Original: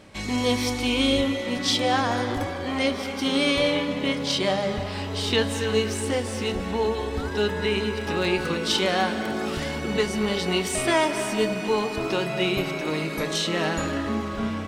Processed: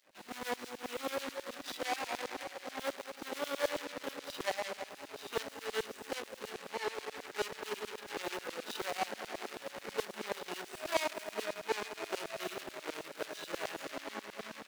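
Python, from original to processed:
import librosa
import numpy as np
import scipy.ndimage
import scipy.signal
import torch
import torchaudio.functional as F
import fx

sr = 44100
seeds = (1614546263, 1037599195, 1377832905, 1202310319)

y = scipy.signal.medfilt(x, 41)
y = fx.filter_lfo_highpass(y, sr, shape='saw_down', hz=9.3, low_hz=540.0, high_hz=4500.0, q=0.75)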